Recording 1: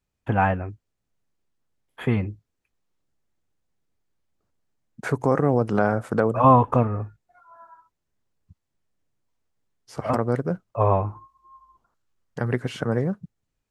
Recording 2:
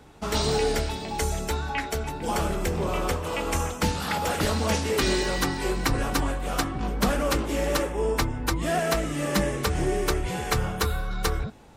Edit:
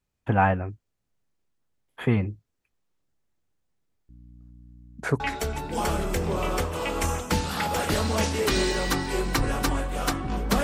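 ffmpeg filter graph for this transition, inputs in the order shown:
-filter_complex "[0:a]asettb=1/sr,asplit=3[a][b][c];[a]atrim=end=4.094[d];[b]atrim=start=4.09:end=5.2,asetpts=PTS-STARTPTS,afade=t=in:d=0.004:c=qsin,afade=t=out:st=1.106:d=0.004:c=qsin,aeval=exprs='val(0)+0.00447*(sin(2*PI*60*n/s)+sin(2*PI*2*60*n/s)/2+sin(2*PI*3*60*n/s)/3+sin(2*PI*4*60*n/s)/4+sin(2*PI*5*60*n/s)/5)':c=same[e];[c]atrim=start=5.196[f];[d][e]acrossfade=d=0.004:c1=hsin:c2=qsin[g];[g][f]acrossfade=d=0.004:c1=qsin:c2=hsin,apad=whole_dur=10.63,atrim=end=10.63,atrim=end=5.202[h];[1:a]atrim=start=1.708:end=7.14[i];[h][i]acrossfade=d=0.004:c1=hsin:c2=hsin"

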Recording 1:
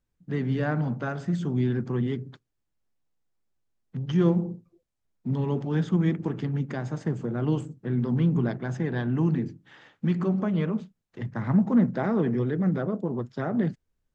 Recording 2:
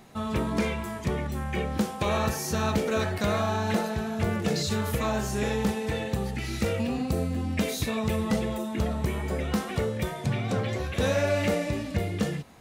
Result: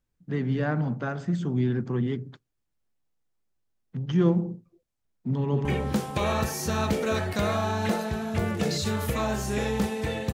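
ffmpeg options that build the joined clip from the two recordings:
-filter_complex "[0:a]apad=whole_dur=10.33,atrim=end=10.33,atrim=end=5.652[a];[1:a]atrim=start=1.498:end=6.18[b];[a][b]acrossfade=d=0.004:c1=hsin:c2=hsin,asplit=2[c][d];[d]afade=t=in:st=5.38:d=0.01,afade=t=out:st=5.65:d=0.01,aecho=0:1:150|300|450|600|750|900|1050|1200|1350:0.630957|0.378574|0.227145|0.136287|0.0817721|0.0490632|0.0294379|0.0176628|0.0105977[e];[c][e]amix=inputs=2:normalize=0"

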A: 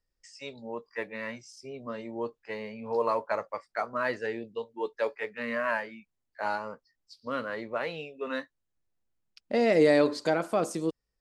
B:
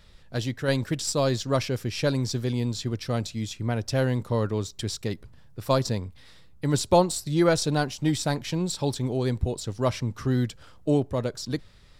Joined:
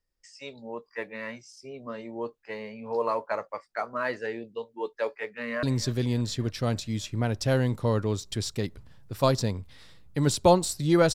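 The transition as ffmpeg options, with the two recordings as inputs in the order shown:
-filter_complex "[0:a]apad=whole_dur=11.14,atrim=end=11.14,atrim=end=5.632[a];[1:a]atrim=start=2.098:end=7.61[b];[a][b]acrossfade=d=0.004:c1=hsin:c2=hsin,asplit=2[c][d];[d]afade=t=in:st=5.25:d=0.01,afade=t=out:st=5.63:d=0.01,aecho=0:1:290|580|870|1160|1450|1740|2030:0.141254|0.0918149|0.0596797|0.0387918|0.0252147|0.0163895|0.0106532[e];[c][e]amix=inputs=2:normalize=0"

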